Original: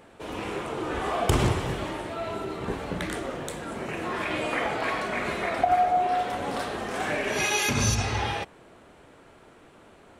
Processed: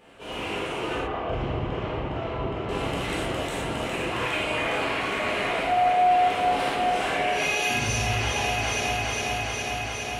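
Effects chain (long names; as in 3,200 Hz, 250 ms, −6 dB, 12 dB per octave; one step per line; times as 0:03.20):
parametric band 2,800 Hz +8 dB 0.55 octaves
on a send: delay that swaps between a low-pass and a high-pass 205 ms, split 940 Hz, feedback 90%, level −6 dB
on the sum: brickwall limiter −18.5 dBFS, peak gain reduction 10.5 dB
0:00.95–0:02.69: head-to-tape spacing loss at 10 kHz 35 dB
reverb whose tail is shaped and stops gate 140 ms flat, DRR −6.5 dB
level −6 dB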